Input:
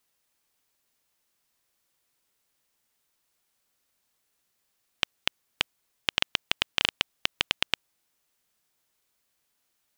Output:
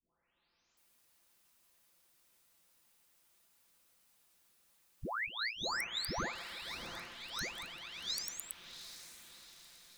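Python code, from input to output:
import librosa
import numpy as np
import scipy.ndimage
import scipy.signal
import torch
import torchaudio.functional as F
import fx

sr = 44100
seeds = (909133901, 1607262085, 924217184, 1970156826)

y = fx.spec_delay(x, sr, highs='late', ms=772)
y = fx.over_compress(y, sr, threshold_db=-40.0, ratio=-0.5)
y = fx.echo_diffused(y, sr, ms=718, feedback_pct=51, wet_db=-10.5)
y = F.gain(torch.from_numpy(y), -1.0).numpy()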